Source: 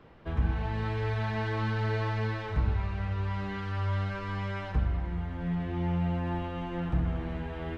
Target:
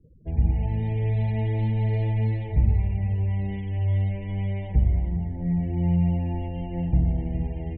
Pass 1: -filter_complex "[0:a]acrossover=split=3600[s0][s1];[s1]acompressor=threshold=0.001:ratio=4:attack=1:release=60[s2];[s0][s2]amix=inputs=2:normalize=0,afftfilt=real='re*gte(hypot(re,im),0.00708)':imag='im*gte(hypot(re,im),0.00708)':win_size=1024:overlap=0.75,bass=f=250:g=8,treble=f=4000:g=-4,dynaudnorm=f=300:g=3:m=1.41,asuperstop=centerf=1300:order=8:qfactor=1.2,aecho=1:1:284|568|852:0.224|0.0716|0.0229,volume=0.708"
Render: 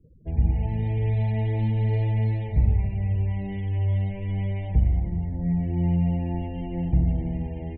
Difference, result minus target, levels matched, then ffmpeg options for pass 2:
echo 128 ms early
-filter_complex "[0:a]acrossover=split=3600[s0][s1];[s1]acompressor=threshold=0.001:ratio=4:attack=1:release=60[s2];[s0][s2]amix=inputs=2:normalize=0,afftfilt=real='re*gte(hypot(re,im),0.00708)':imag='im*gte(hypot(re,im),0.00708)':win_size=1024:overlap=0.75,bass=f=250:g=8,treble=f=4000:g=-4,dynaudnorm=f=300:g=3:m=1.41,asuperstop=centerf=1300:order=8:qfactor=1.2,aecho=1:1:412|824|1236:0.224|0.0716|0.0229,volume=0.708"

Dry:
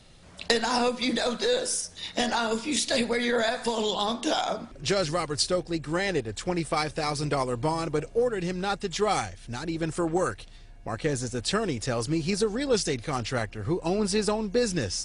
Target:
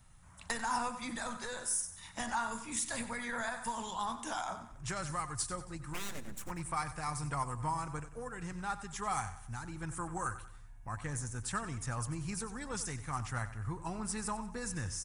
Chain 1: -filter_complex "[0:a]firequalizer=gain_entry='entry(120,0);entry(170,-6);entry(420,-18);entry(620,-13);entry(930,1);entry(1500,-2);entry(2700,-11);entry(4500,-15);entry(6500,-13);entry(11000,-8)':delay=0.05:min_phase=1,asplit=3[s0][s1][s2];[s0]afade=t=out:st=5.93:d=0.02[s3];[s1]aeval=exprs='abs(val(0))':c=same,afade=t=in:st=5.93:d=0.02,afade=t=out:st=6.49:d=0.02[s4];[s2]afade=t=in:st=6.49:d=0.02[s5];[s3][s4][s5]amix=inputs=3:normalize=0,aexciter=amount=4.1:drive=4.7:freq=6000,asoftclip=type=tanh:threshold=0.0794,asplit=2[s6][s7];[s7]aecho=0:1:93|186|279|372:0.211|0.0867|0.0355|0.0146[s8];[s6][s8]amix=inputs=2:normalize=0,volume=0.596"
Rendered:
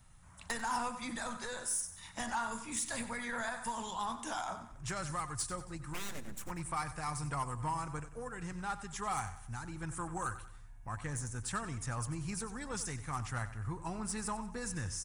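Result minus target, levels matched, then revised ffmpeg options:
saturation: distortion +14 dB
-filter_complex "[0:a]firequalizer=gain_entry='entry(120,0);entry(170,-6);entry(420,-18);entry(620,-13);entry(930,1);entry(1500,-2);entry(2700,-11);entry(4500,-15);entry(6500,-13);entry(11000,-8)':delay=0.05:min_phase=1,asplit=3[s0][s1][s2];[s0]afade=t=out:st=5.93:d=0.02[s3];[s1]aeval=exprs='abs(val(0))':c=same,afade=t=in:st=5.93:d=0.02,afade=t=out:st=6.49:d=0.02[s4];[s2]afade=t=in:st=6.49:d=0.02[s5];[s3][s4][s5]amix=inputs=3:normalize=0,aexciter=amount=4.1:drive=4.7:freq=6000,asoftclip=type=tanh:threshold=0.211,asplit=2[s6][s7];[s7]aecho=0:1:93|186|279|372:0.211|0.0867|0.0355|0.0146[s8];[s6][s8]amix=inputs=2:normalize=0,volume=0.596"

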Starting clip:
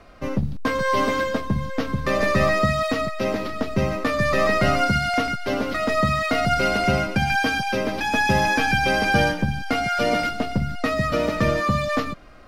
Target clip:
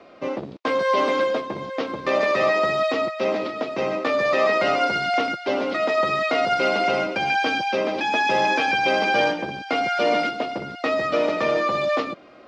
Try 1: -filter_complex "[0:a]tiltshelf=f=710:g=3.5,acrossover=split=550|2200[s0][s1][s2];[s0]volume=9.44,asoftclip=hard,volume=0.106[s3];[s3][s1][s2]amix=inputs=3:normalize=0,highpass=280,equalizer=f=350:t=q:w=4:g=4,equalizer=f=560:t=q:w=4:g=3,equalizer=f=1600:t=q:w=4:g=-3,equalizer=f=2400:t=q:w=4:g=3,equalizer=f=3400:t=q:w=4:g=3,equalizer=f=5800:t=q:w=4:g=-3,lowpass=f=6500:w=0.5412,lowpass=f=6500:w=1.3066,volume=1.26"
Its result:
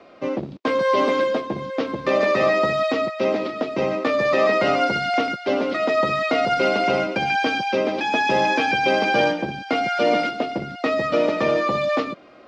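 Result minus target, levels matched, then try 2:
overload inside the chain: distortion -5 dB
-filter_complex "[0:a]tiltshelf=f=710:g=3.5,acrossover=split=550|2200[s0][s1][s2];[s0]volume=21.1,asoftclip=hard,volume=0.0473[s3];[s3][s1][s2]amix=inputs=3:normalize=0,highpass=280,equalizer=f=350:t=q:w=4:g=4,equalizer=f=560:t=q:w=4:g=3,equalizer=f=1600:t=q:w=4:g=-3,equalizer=f=2400:t=q:w=4:g=3,equalizer=f=3400:t=q:w=4:g=3,equalizer=f=5800:t=q:w=4:g=-3,lowpass=f=6500:w=0.5412,lowpass=f=6500:w=1.3066,volume=1.26"

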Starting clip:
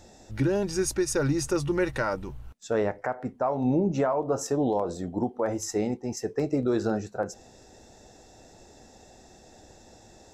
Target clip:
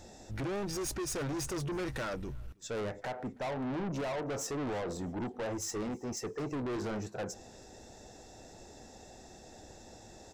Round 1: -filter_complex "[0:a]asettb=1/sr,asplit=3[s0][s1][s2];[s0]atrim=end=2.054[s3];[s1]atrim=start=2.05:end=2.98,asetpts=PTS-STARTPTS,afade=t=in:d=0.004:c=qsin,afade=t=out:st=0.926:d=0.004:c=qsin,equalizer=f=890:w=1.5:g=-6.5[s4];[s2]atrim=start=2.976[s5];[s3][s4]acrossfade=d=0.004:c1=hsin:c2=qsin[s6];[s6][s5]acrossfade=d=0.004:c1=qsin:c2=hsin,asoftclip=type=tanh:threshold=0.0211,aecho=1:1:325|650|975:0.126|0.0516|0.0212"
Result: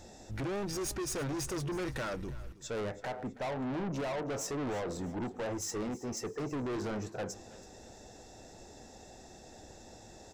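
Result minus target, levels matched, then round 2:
echo-to-direct +9.5 dB
-filter_complex "[0:a]asettb=1/sr,asplit=3[s0][s1][s2];[s0]atrim=end=2.054[s3];[s1]atrim=start=2.05:end=2.98,asetpts=PTS-STARTPTS,afade=t=in:d=0.004:c=qsin,afade=t=out:st=0.926:d=0.004:c=qsin,equalizer=f=890:w=1.5:g=-6.5[s4];[s2]atrim=start=2.976[s5];[s3][s4]acrossfade=d=0.004:c1=hsin:c2=qsin[s6];[s6][s5]acrossfade=d=0.004:c1=qsin:c2=hsin,asoftclip=type=tanh:threshold=0.0211,aecho=1:1:325|650:0.0422|0.0173"

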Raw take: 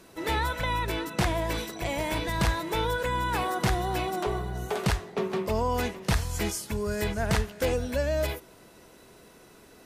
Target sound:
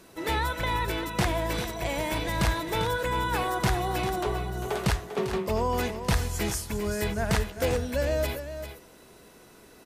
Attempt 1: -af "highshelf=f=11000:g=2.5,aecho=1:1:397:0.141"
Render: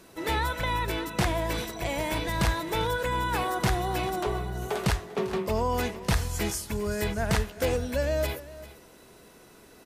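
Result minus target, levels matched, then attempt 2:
echo-to-direct -7 dB
-af "highshelf=f=11000:g=2.5,aecho=1:1:397:0.316"

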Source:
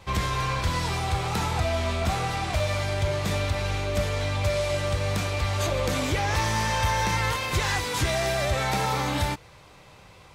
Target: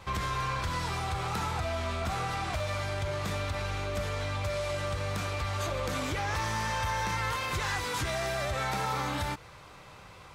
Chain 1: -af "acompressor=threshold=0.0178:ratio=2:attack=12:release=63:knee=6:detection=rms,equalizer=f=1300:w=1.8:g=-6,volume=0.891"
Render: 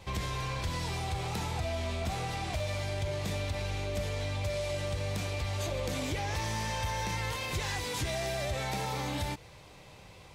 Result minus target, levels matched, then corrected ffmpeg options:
1 kHz band -3.0 dB
-af "acompressor=threshold=0.0178:ratio=2:attack=12:release=63:knee=6:detection=rms,equalizer=f=1300:w=1.8:g=5.5,volume=0.891"

